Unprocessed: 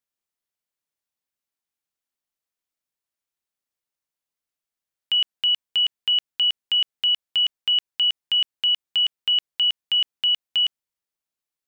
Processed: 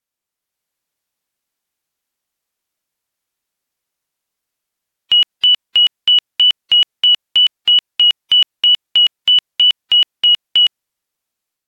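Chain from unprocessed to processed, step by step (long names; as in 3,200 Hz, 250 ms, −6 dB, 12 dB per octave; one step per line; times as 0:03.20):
tape wow and flutter 19 cents
automatic gain control gain up to 5.5 dB
level +4 dB
AAC 64 kbit/s 48,000 Hz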